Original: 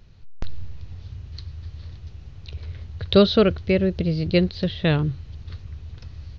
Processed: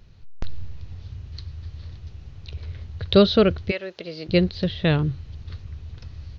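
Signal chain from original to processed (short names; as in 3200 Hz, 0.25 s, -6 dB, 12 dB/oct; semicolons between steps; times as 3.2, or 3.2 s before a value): 3.7–4.28 HPF 920 Hz -> 390 Hz 12 dB/oct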